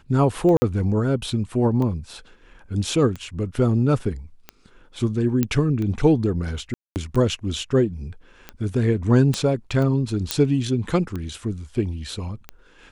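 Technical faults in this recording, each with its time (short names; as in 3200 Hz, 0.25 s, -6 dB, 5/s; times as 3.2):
tick 45 rpm -18 dBFS
0.57–0.62 gap 50 ms
5.43 pop -8 dBFS
6.74–6.96 gap 0.219 s
9.34 pop -10 dBFS
10.31 pop -3 dBFS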